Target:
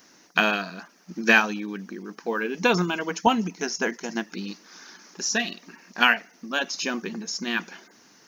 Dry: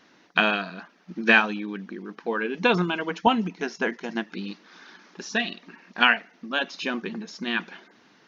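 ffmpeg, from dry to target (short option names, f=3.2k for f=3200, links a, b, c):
-af "aexciter=amount=4.2:drive=8.4:freq=5.2k"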